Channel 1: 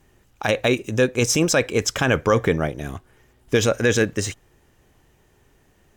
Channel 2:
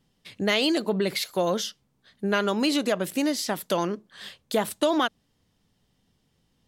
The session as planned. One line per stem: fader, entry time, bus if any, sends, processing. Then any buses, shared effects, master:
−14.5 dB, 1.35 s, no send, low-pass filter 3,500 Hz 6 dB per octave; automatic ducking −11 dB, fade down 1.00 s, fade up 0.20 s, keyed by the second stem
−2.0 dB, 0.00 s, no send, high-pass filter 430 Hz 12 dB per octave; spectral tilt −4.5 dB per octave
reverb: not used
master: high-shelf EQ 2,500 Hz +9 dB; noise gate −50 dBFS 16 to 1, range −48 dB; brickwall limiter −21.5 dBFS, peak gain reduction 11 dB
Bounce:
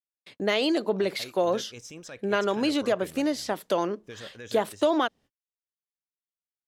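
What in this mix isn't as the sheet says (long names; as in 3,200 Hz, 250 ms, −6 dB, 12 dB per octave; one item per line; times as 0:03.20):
stem 1: entry 1.35 s → 0.55 s
master: missing brickwall limiter −21.5 dBFS, peak gain reduction 11 dB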